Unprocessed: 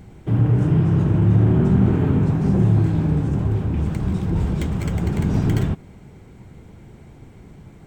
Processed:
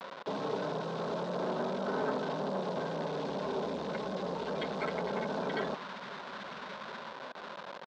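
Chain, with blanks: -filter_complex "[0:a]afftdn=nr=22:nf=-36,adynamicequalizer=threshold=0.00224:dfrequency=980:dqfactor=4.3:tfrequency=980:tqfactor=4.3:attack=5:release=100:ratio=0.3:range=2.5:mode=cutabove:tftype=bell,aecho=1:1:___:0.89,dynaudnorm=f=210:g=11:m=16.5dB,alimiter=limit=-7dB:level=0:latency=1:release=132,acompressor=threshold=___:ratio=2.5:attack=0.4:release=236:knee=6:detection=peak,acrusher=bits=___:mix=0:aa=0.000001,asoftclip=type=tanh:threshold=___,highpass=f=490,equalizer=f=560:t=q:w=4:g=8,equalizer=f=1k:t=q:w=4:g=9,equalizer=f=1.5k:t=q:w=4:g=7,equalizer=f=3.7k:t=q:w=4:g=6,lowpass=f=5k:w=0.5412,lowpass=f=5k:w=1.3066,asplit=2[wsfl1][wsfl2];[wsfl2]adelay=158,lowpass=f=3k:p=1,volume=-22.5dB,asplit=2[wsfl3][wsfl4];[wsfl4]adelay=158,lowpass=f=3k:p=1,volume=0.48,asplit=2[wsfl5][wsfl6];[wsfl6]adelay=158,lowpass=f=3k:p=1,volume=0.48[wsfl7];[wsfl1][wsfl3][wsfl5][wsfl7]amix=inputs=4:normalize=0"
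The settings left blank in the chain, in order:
4.6, -20dB, 6, -20dB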